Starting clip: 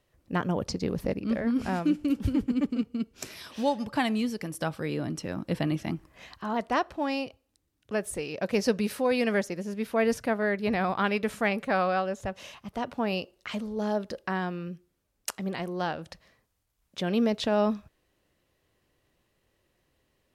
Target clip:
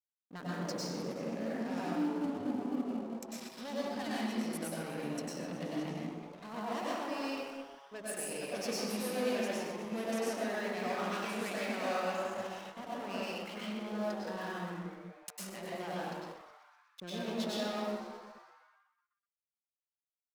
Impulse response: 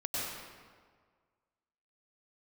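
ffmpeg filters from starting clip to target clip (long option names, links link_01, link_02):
-filter_complex "[0:a]flanger=delay=3.4:depth=3.8:regen=-75:speed=0.43:shape=sinusoidal,asoftclip=type=tanh:threshold=-30.5dB,highpass=frequency=160:width=0.5412,highpass=frequency=160:width=1.3066[link_01];[1:a]atrim=start_sample=2205[link_02];[link_01][link_02]afir=irnorm=-1:irlink=0,anlmdn=0.158,aeval=exprs='sgn(val(0))*max(abs(val(0))-0.00211,0)':channel_layout=same,highshelf=frequency=4200:gain=10,asplit=8[link_03][link_04][link_05][link_06][link_07][link_08][link_09][link_10];[link_04]adelay=125,afreqshift=140,volume=-13dB[link_11];[link_05]adelay=250,afreqshift=280,volume=-16.9dB[link_12];[link_06]adelay=375,afreqshift=420,volume=-20.8dB[link_13];[link_07]adelay=500,afreqshift=560,volume=-24.6dB[link_14];[link_08]adelay=625,afreqshift=700,volume=-28.5dB[link_15];[link_09]adelay=750,afreqshift=840,volume=-32.4dB[link_16];[link_10]adelay=875,afreqshift=980,volume=-36.3dB[link_17];[link_03][link_11][link_12][link_13][link_14][link_15][link_16][link_17]amix=inputs=8:normalize=0,volume=-5.5dB"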